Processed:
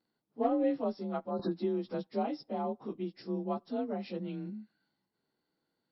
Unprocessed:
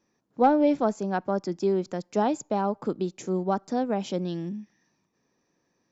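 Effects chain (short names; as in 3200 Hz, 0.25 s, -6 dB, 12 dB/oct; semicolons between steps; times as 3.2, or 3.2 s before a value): inharmonic rescaling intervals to 91%; 1.31–1.51 spectral delete 1800–3700 Hz; 1.39–2.07 three-band squash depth 100%; gain -7 dB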